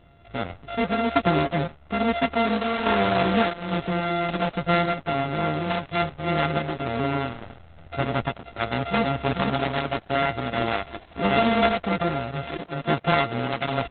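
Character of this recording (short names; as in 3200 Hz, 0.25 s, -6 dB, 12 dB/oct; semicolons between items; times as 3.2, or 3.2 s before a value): a buzz of ramps at a fixed pitch in blocks of 64 samples; random-step tremolo; Opus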